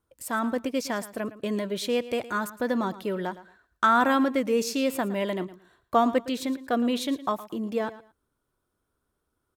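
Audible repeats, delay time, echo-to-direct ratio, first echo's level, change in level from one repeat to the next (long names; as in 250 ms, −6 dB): 2, 113 ms, −16.0 dB, −16.0 dB, −13.0 dB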